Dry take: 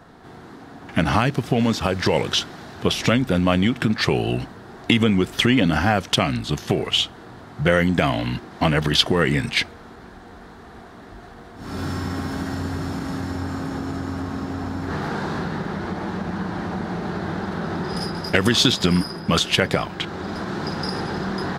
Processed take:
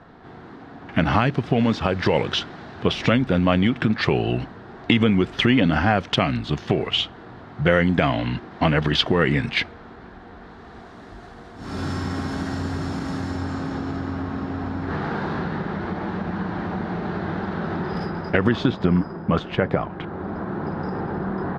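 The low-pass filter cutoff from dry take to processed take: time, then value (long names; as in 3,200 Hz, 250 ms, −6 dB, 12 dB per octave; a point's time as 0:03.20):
0:10.37 3,400 Hz
0:11.01 8,000 Hz
0:13.27 8,000 Hz
0:14.23 3,300 Hz
0:17.69 3,300 Hz
0:18.72 1,300 Hz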